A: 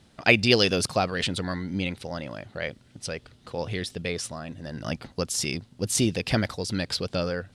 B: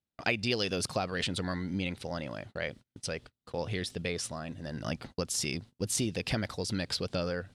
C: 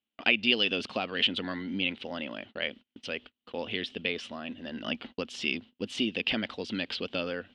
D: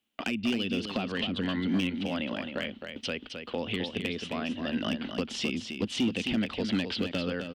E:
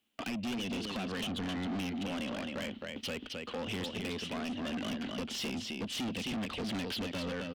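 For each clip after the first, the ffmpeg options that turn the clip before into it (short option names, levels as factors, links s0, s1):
-af "agate=range=0.0224:threshold=0.00708:ratio=16:detection=peak,acompressor=threshold=0.0501:ratio=3,volume=0.75"
-af "lowpass=f=3000:t=q:w=5.6,lowshelf=f=180:t=q:w=3:g=-8,volume=0.794"
-filter_complex "[0:a]acrossover=split=260[s0][s1];[s1]acompressor=threshold=0.0112:ratio=10[s2];[s0][s2]amix=inputs=2:normalize=0,volume=29.9,asoftclip=hard,volume=0.0335,aecho=1:1:264:0.447,volume=2.51"
-af "asoftclip=type=tanh:threshold=0.0178,volume=1.19"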